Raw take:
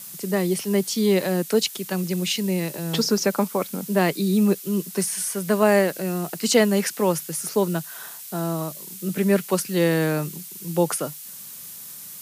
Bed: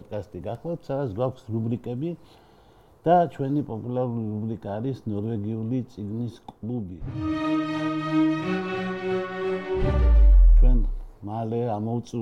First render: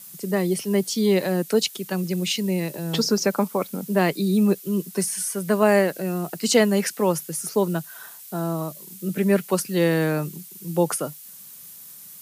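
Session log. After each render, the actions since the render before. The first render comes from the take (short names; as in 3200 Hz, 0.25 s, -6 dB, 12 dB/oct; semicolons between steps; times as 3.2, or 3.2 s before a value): denoiser 6 dB, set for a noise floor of -39 dBFS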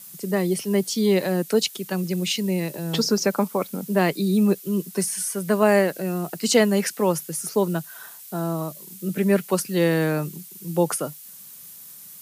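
nothing audible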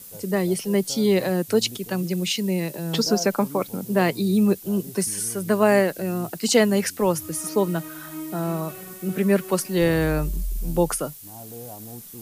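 add bed -13 dB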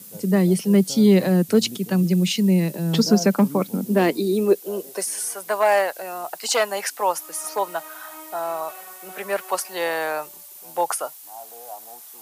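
one-sided clip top -13 dBFS; high-pass sweep 180 Hz -> 780 Hz, 3.61–5.28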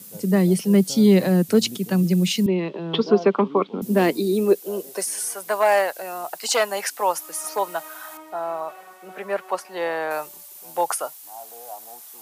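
2.46–3.82 speaker cabinet 290–3400 Hz, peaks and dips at 400 Hz +8 dB, 570 Hz -3 dB, 1100 Hz +9 dB, 1700 Hz -5 dB, 3300 Hz +7 dB; 8.17–10.11 LPF 1800 Hz 6 dB/oct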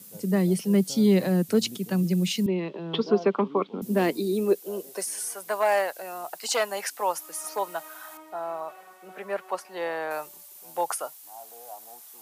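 gain -5 dB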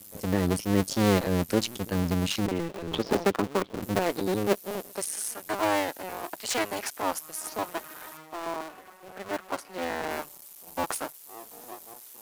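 cycle switcher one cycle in 2, muted; in parallel at -11 dB: wavefolder -27.5 dBFS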